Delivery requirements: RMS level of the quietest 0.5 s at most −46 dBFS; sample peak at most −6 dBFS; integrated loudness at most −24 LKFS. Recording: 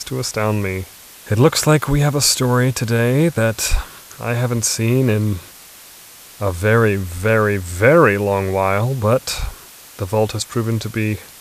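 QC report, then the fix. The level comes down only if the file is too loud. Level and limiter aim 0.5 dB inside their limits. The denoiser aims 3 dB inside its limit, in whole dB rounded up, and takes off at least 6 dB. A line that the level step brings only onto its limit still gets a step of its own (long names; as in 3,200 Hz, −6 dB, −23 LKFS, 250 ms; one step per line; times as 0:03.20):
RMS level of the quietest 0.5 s −41 dBFS: out of spec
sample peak −1.5 dBFS: out of spec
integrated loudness −17.5 LKFS: out of spec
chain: level −7 dB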